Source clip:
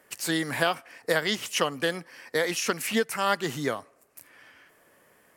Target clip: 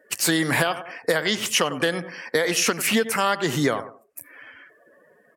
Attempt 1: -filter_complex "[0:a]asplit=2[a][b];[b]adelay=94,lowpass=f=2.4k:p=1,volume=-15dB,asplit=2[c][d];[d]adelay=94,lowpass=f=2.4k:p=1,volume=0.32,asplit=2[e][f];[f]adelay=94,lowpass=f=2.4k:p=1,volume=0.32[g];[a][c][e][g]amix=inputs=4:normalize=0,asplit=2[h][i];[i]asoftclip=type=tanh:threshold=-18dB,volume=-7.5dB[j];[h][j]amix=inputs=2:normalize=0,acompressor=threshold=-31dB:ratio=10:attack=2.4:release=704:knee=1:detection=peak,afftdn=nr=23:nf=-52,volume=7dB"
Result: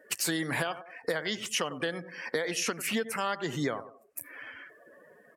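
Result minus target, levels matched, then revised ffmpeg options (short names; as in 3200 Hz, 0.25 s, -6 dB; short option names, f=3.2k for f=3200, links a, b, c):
compressor: peak gain reduction +9.5 dB
-filter_complex "[0:a]asplit=2[a][b];[b]adelay=94,lowpass=f=2.4k:p=1,volume=-15dB,asplit=2[c][d];[d]adelay=94,lowpass=f=2.4k:p=1,volume=0.32,asplit=2[e][f];[f]adelay=94,lowpass=f=2.4k:p=1,volume=0.32[g];[a][c][e][g]amix=inputs=4:normalize=0,asplit=2[h][i];[i]asoftclip=type=tanh:threshold=-18dB,volume=-7.5dB[j];[h][j]amix=inputs=2:normalize=0,acompressor=threshold=-20.5dB:ratio=10:attack=2.4:release=704:knee=1:detection=peak,afftdn=nr=23:nf=-52,volume=7dB"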